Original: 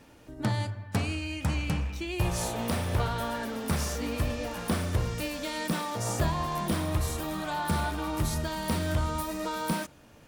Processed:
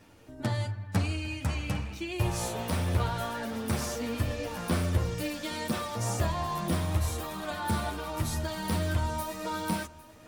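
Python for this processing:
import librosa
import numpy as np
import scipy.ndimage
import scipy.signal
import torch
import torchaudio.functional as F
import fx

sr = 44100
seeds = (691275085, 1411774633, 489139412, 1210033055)

p1 = fx.chorus_voices(x, sr, voices=2, hz=0.52, base_ms=10, depth_ms=1.7, mix_pct=40)
p2 = p1 + fx.echo_single(p1, sr, ms=803, db=-18.5, dry=0)
y = p2 * 10.0 ** (1.5 / 20.0)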